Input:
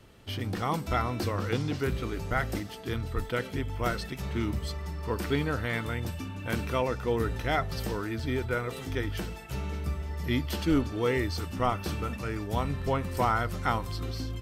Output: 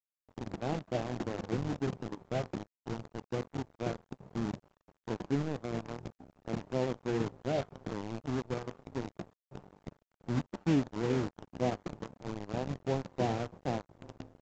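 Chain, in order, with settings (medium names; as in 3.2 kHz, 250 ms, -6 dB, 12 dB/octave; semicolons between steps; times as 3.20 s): tracing distortion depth 0.3 ms; elliptic band-pass 120–790 Hz, stop band 50 dB; de-hum 239.4 Hz, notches 4; in parallel at -6.5 dB: bit crusher 5-bit; on the sum: crossover distortion -38 dBFS; formant shift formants -2 st; trim -4.5 dB; µ-law 128 kbps 16 kHz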